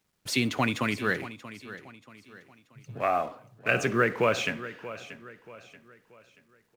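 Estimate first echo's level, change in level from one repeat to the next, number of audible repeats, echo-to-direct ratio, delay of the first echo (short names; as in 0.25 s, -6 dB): -23.0 dB, no steady repeat, 4, -13.5 dB, 66 ms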